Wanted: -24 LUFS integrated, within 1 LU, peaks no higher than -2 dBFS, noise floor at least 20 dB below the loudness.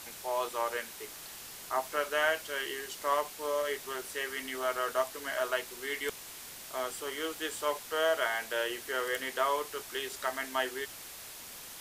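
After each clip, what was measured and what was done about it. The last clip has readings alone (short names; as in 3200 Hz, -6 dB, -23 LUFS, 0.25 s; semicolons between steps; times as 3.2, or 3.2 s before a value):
noise floor -47 dBFS; noise floor target -54 dBFS; loudness -34.0 LUFS; peak -16.5 dBFS; loudness target -24.0 LUFS
-> denoiser 7 dB, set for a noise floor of -47 dBFS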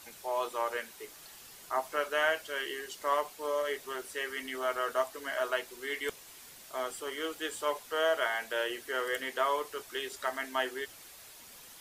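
noise floor -52 dBFS; noise floor target -54 dBFS
-> denoiser 6 dB, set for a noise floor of -52 dBFS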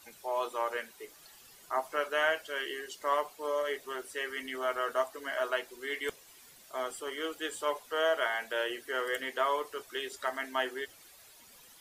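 noise floor -57 dBFS; loudness -34.0 LUFS; peak -16.5 dBFS; loudness target -24.0 LUFS
-> gain +10 dB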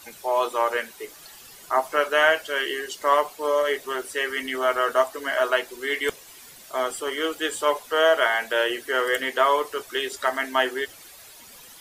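loudness -24.0 LUFS; peak -6.5 dBFS; noise floor -47 dBFS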